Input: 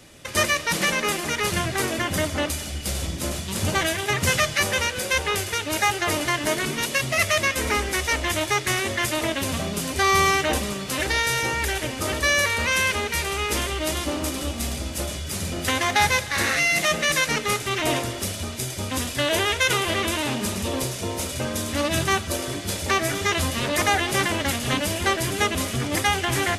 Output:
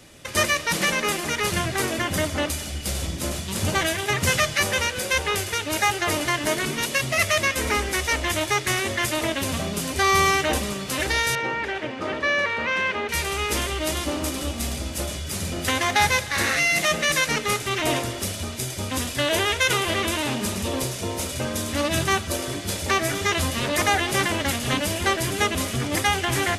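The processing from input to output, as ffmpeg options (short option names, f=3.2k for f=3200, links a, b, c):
-filter_complex "[0:a]asettb=1/sr,asplit=3[a][b][c];[a]atrim=end=11.354[d];[b]atrim=start=11.35:end=13.09,asetpts=PTS-STARTPTS,afade=t=in:d=0.004:c=qsin,afade=t=out:st=1.736:d=0.004:c=qsin,highpass=170,lowpass=2.5k[e];[c]atrim=start=13.086[f];[d][e]acrossfade=d=0.004:c1=hsin:c2=qsin[g];[g][f]acrossfade=d=0.004:c1=qsin:c2=hsin"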